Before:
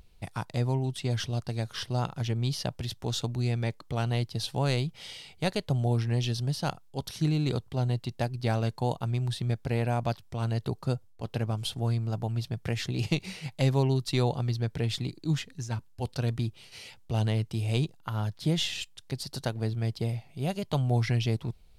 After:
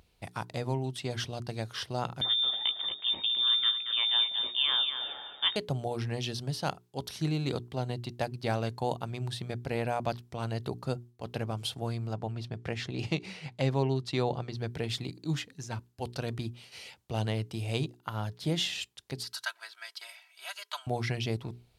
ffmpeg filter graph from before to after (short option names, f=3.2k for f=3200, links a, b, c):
-filter_complex "[0:a]asettb=1/sr,asplit=3[a][b][c];[a]atrim=end=2.214[d];[b]atrim=start=2.21:end=5.56,asetpts=PTS-STARTPTS,afade=t=in:d=0.004:c=qsin,afade=t=out:st=3.346:d=0.004:c=qsin,asplit=2[e][f];[f]adelay=18,volume=-9.5dB[g];[e][g]amix=inputs=2:normalize=0,atrim=end_sample=147735,aecho=1:1:229|458|687|916:0.398|0.139|0.0488|0.0171,atrim=end_sample=147735,lowpass=f=3.1k:t=q:w=0.5098,lowpass=f=3.1k:t=q:w=0.6013,lowpass=f=3.1k:t=q:w=0.9,lowpass=f=3.1k:t=q:w=2.563,afreqshift=-3700[h];[c]atrim=start=5.556[i];[d][h]acrossfade=d=0.004:c1=hsin:c2=qsin[j];[j][i]acrossfade=d=0.004:c1=qsin:c2=hsin,asettb=1/sr,asplit=3[k][l][m];[k]atrim=end=12.134[n];[l]atrim=start=12.13:end=14.57,asetpts=PTS-STARTPTS,afade=t=in:d=0.004:c=qsin,afade=t=out:st=2.436:d=0.004:c=qsin,lowpass=10k,highshelf=f=5k:g=-7.5[o];[m]atrim=start=14.566[p];[n][o]acrossfade=d=0.004:c1=hsin:c2=qsin[q];[q][p]acrossfade=d=0.004:c1=qsin:c2=hsin,asettb=1/sr,asplit=3[r][s][t];[r]atrim=end=19.234[u];[s]atrim=start=19.23:end=20.87,asetpts=PTS-STARTPTS,afade=t=in:d=0.004:c=qsin,afade=t=out:st=1.636:d=0.004:c=qsin,highpass=f=1.1k:w=0.5412,highpass=f=1.1k:w=1.3066,equalizer=f=1.5k:t=o:w=0.24:g=8,aecho=1:1:3.1:0.93,atrim=end_sample=72324[v];[t]atrim=start=20.866[w];[u][v]acrossfade=d=0.004:c1=hsin:c2=qsin[x];[x][w]acrossfade=d=0.004:c1=qsin:c2=hsin,highpass=50,bass=f=250:g=-5,treble=f=4k:g=-2,bandreject=f=60:t=h:w=6,bandreject=f=120:t=h:w=6,bandreject=f=180:t=h:w=6,bandreject=f=240:t=h:w=6,bandreject=f=300:t=h:w=6,bandreject=f=360:t=h:w=6,bandreject=f=420:t=h:w=6"